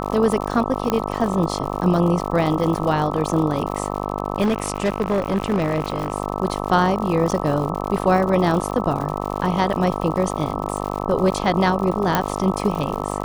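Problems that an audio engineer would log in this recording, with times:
buzz 50 Hz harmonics 26 -26 dBFS
crackle 110/s -27 dBFS
0.9 pop -6 dBFS
4.41–6.12 clipped -15 dBFS
7.31–7.32 gap 7.2 ms
12.15 pop -3 dBFS

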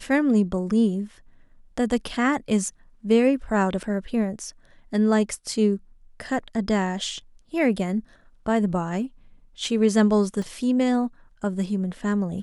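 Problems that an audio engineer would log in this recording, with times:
3.83–3.84 gap 6.2 ms
10.42 gap 2.3 ms

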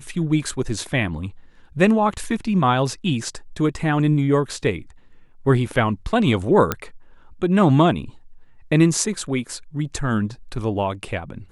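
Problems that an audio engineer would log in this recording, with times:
6.72 pop -5 dBFS

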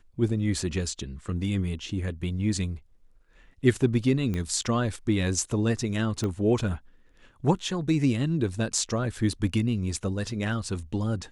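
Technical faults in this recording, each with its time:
4.34 pop -19 dBFS
6.24 pop -18 dBFS

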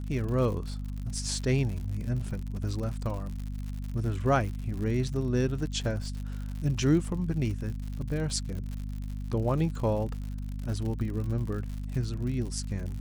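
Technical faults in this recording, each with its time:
crackle 97/s -36 dBFS
hum 50 Hz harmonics 5 -35 dBFS

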